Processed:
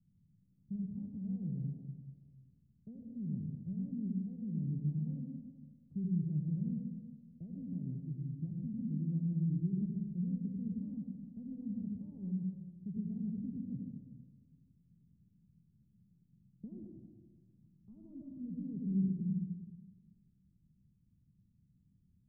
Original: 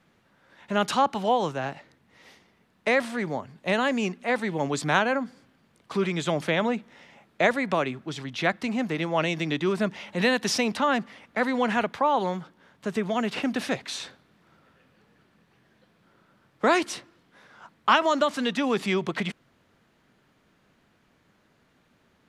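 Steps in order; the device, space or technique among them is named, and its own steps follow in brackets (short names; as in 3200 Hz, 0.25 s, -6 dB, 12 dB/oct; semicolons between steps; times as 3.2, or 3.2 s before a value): club heard from the street (limiter -17 dBFS, peak gain reduction 9 dB; LPF 160 Hz 24 dB/oct; reverb RT60 1.6 s, pre-delay 75 ms, DRR 1 dB)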